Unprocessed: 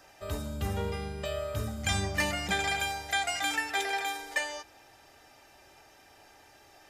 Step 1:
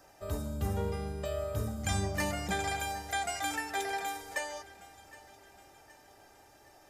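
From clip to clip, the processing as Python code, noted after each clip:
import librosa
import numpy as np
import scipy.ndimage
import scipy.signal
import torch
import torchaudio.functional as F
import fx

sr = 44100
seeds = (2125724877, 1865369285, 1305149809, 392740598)

y = fx.peak_eq(x, sr, hz=2800.0, db=-8.5, octaves=1.9)
y = fx.echo_feedback(y, sr, ms=768, feedback_pct=51, wet_db=-19.5)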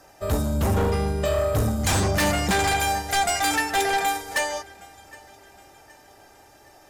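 y = fx.fold_sine(x, sr, drive_db=11, ceiling_db=-18.0)
y = fx.upward_expand(y, sr, threshold_db=-38.0, expansion=1.5)
y = y * 10.0 ** (1.0 / 20.0)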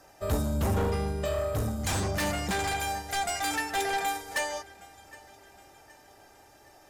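y = fx.rider(x, sr, range_db=10, speed_s=2.0)
y = y * 10.0 ** (-7.0 / 20.0)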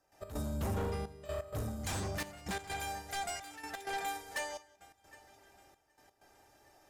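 y = fx.step_gate(x, sr, bpm=128, pattern='.x.xxxxxx.', floor_db=-12.0, edge_ms=4.5)
y = y + 10.0 ** (-23.0 / 20.0) * np.pad(y, (int(185 * sr / 1000.0), 0))[:len(y)]
y = y * 10.0 ** (-8.0 / 20.0)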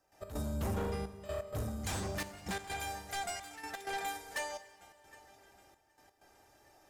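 y = fx.rev_fdn(x, sr, rt60_s=2.8, lf_ratio=1.0, hf_ratio=0.85, size_ms=92.0, drr_db=14.5)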